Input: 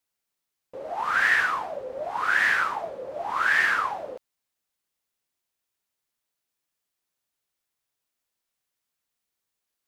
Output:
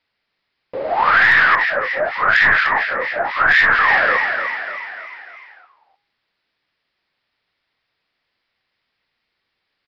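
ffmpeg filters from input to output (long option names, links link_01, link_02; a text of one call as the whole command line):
ffmpeg -i in.wav -filter_complex "[0:a]equalizer=frequency=2000:width_type=o:width=0.66:gain=6,asoftclip=type=tanh:threshold=-9dB,aresample=11025,aresample=44100,asplit=7[link_01][link_02][link_03][link_04][link_05][link_06][link_07];[link_02]adelay=297,afreqshift=45,volume=-8dB[link_08];[link_03]adelay=594,afreqshift=90,volume=-13.5dB[link_09];[link_04]adelay=891,afreqshift=135,volume=-19dB[link_10];[link_05]adelay=1188,afreqshift=180,volume=-24.5dB[link_11];[link_06]adelay=1485,afreqshift=225,volume=-30.1dB[link_12];[link_07]adelay=1782,afreqshift=270,volume=-35.6dB[link_13];[link_01][link_08][link_09][link_10][link_11][link_12][link_13]amix=inputs=7:normalize=0,aeval=exprs='0.335*(cos(1*acos(clip(val(0)/0.335,-1,1)))-cos(1*PI/2))+0.0376*(cos(2*acos(clip(val(0)/0.335,-1,1)))-cos(2*PI/2))':channel_layout=same,bandreject=frequency=409:width_type=h:width=4,bandreject=frequency=818:width_type=h:width=4,bandreject=frequency=1227:width_type=h:width=4,bandreject=frequency=1636:width_type=h:width=4,bandreject=frequency=2045:width_type=h:width=4,bandreject=frequency=2454:width_type=h:width=4,bandreject=frequency=2863:width_type=h:width=4,bandreject=frequency=3272:width_type=h:width=4,bandreject=frequency=3681:width_type=h:width=4,bandreject=frequency=4090:width_type=h:width=4,bandreject=frequency=4499:width_type=h:width=4,bandreject=frequency=4908:width_type=h:width=4,bandreject=frequency=5317:width_type=h:width=4,bandreject=frequency=5726:width_type=h:width=4,bandreject=frequency=6135:width_type=h:width=4,bandreject=frequency=6544:width_type=h:width=4,bandreject=frequency=6953:width_type=h:width=4,bandreject=frequency=7362:width_type=h:width=4,bandreject=frequency=7771:width_type=h:width=4,bandreject=frequency=8180:width_type=h:width=4,bandreject=frequency=8589:width_type=h:width=4,bandreject=frequency=8998:width_type=h:width=4,bandreject=frequency=9407:width_type=h:width=4,bandreject=frequency=9816:width_type=h:width=4,bandreject=frequency=10225:width_type=h:width=4,bandreject=frequency=10634:width_type=h:width=4,bandreject=frequency=11043:width_type=h:width=4,bandreject=frequency=11452:width_type=h:width=4,bandreject=frequency=11861:width_type=h:width=4,asettb=1/sr,asplit=3[link_14][link_15][link_16];[link_14]atrim=end=1.554[link_17];[link_15]atrim=start=1.55:end=3.79,asetpts=PTS-STARTPTS,afade=type=in:duration=0.004:curve=qsin,afade=type=out:start_time=2.236:duration=0.004:curve=qsin,acrossover=split=1700[link_18][link_19];[link_18]aeval=exprs='val(0)*(1-1/2+1/2*cos(2*PI*4.2*n/s))':channel_layout=same[link_20];[link_19]aeval=exprs='val(0)*(1-1/2-1/2*cos(2*PI*4.2*n/s))':channel_layout=same[link_21];[link_20][link_21]amix=inputs=2:normalize=0[link_22];[link_16]atrim=start=3.786[link_23];[link_17][link_22]acrossfade=duration=0.004:curve1=hsin:curve2=qsin[link_24];[link_24][link_23]acrossfade=duration=0.004:curve1=qsin:curve2=hsin,alimiter=level_in=15.5dB:limit=-1dB:release=50:level=0:latency=1,volume=-3dB" out.wav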